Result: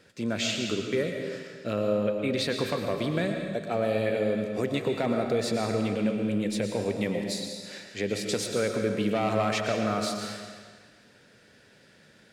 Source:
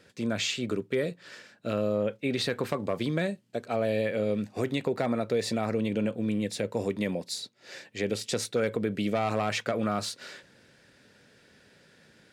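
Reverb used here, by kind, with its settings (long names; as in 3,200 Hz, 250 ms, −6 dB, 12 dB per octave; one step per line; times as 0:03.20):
comb and all-pass reverb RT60 1.6 s, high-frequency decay 0.95×, pre-delay 75 ms, DRR 3.5 dB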